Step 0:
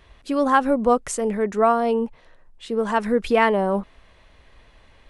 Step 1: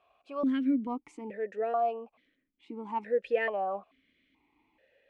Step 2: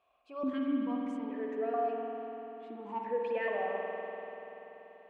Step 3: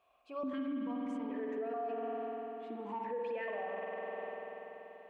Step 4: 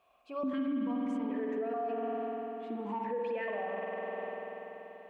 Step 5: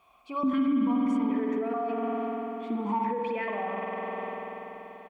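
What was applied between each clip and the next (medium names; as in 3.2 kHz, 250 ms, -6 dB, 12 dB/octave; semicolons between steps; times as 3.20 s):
stepped vowel filter 2.3 Hz; trim -1 dB
spring tank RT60 3.9 s, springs 48 ms, chirp 40 ms, DRR -1.5 dB; trim -6 dB
peak limiter -33 dBFS, peak gain reduction 11.5 dB; trim +1.5 dB
peaking EQ 200 Hz +5 dB 0.62 oct; trim +3 dB
comb 0.9 ms, depth 53%; trim +6.5 dB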